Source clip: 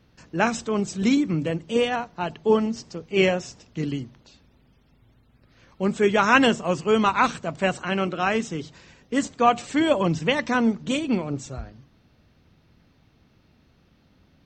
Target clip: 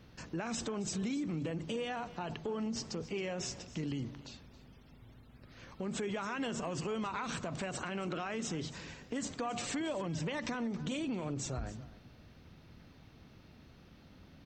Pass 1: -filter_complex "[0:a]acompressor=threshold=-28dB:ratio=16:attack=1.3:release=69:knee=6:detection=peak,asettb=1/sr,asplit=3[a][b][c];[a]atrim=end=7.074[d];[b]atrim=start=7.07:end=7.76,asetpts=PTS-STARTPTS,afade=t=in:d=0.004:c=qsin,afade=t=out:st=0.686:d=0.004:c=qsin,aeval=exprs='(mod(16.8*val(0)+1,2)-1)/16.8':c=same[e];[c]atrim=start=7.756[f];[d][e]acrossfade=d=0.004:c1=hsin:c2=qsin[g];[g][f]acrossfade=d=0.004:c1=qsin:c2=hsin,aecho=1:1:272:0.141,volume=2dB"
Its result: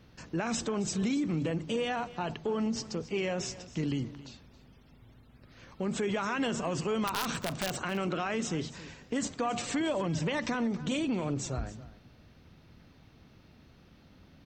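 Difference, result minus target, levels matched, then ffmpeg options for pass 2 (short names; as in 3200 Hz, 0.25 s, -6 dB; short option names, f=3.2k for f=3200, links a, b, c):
compressor: peak gain reduction -6 dB
-filter_complex "[0:a]acompressor=threshold=-34.5dB:ratio=16:attack=1.3:release=69:knee=6:detection=peak,asettb=1/sr,asplit=3[a][b][c];[a]atrim=end=7.074[d];[b]atrim=start=7.07:end=7.76,asetpts=PTS-STARTPTS,afade=t=in:d=0.004:c=qsin,afade=t=out:st=0.686:d=0.004:c=qsin,aeval=exprs='(mod(16.8*val(0)+1,2)-1)/16.8':c=same[e];[c]atrim=start=7.756[f];[d][e]acrossfade=d=0.004:c1=hsin:c2=qsin[g];[g][f]acrossfade=d=0.004:c1=qsin:c2=hsin,aecho=1:1:272:0.141,volume=2dB"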